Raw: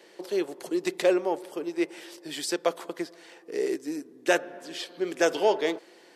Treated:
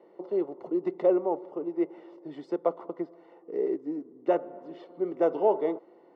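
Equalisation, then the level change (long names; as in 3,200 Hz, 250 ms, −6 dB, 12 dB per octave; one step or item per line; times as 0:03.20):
Savitzky-Golay smoothing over 65 samples
high-frequency loss of the air 140 metres
0.0 dB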